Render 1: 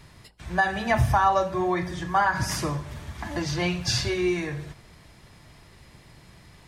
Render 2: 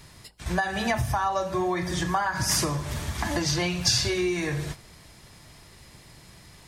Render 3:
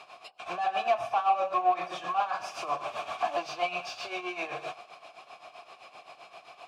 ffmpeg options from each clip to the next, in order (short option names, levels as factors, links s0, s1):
-af "agate=range=0.447:threshold=0.00891:ratio=16:detection=peak,acompressor=threshold=0.0282:ratio=6,bass=f=250:g=-1,treble=f=4000:g=7,volume=2.37"
-filter_complex "[0:a]asplit=2[s0][s1];[s1]highpass=f=720:p=1,volume=25.1,asoftclip=type=tanh:threshold=0.355[s2];[s0][s2]amix=inputs=2:normalize=0,lowpass=f=7100:p=1,volume=0.501,tremolo=f=7.7:d=0.73,asplit=3[s3][s4][s5];[s3]bandpass=f=730:t=q:w=8,volume=1[s6];[s4]bandpass=f=1090:t=q:w=8,volume=0.501[s7];[s5]bandpass=f=2440:t=q:w=8,volume=0.355[s8];[s6][s7][s8]amix=inputs=3:normalize=0"